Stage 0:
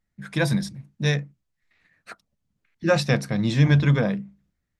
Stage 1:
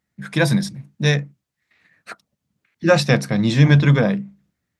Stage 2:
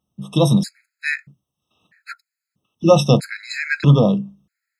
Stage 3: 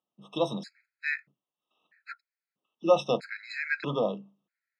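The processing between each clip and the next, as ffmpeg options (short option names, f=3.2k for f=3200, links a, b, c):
-af "highpass=100,volume=5.5dB"
-af "afftfilt=real='re*gt(sin(2*PI*0.78*pts/sr)*(1-2*mod(floor(b*sr/1024/1300),2)),0)':imag='im*gt(sin(2*PI*0.78*pts/sr)*(1-2*mod(floor(b*sr/1024/1300),2)),0)':win_size=1024:overlap=0.75,volume=3dB"
-af "highpass=410,lowpass=3.4k,volume=-7.5dB"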